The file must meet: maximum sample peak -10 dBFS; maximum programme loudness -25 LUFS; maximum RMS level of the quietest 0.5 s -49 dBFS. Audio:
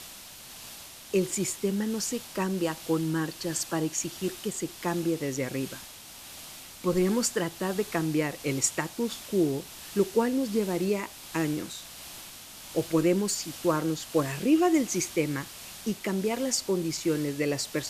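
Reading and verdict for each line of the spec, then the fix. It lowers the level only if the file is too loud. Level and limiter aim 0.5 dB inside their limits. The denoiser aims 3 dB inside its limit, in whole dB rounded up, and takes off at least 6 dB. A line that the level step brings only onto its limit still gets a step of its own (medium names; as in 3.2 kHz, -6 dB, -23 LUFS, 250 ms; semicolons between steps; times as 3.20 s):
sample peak -11.0 dBFS: pass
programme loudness -29.0 LUFS: pass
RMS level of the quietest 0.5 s -46 dBFS: fail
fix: noise reduction 6 dB, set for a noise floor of -46 dBFS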